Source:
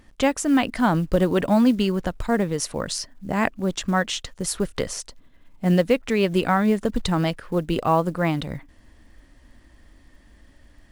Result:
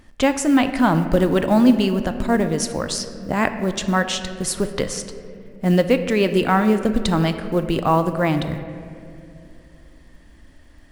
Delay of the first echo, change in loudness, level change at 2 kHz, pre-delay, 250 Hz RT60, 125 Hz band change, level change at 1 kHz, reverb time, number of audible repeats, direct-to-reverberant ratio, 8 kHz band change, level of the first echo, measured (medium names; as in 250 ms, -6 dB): no echo, +3.0 dB, +3.0 dB, 3 ms, 3.3 s, +2.5 dB, +3.0 dB, 2.6 s, no echo, 8.5 dB, +2.5 dB, no echo